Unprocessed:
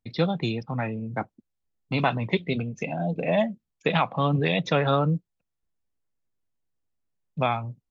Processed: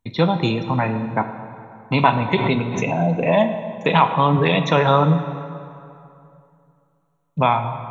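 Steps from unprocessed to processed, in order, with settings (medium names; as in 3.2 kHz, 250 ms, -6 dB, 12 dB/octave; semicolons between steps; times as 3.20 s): peaking EQ 970 Hz +12.5 dB 0.24 oct; in parallel at -2 dB: peak limiter -17 dBFS, peak gain reduction 10.5 dB; on the sum: Butterworth band-stop 4.9 kHz, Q 3.9; plate-style reverb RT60 2.6 s, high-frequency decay 0.65×, DRR 8 dB; 2.35–2.97 s: swell ahead of each attack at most 46 dB/s; trim +2 dB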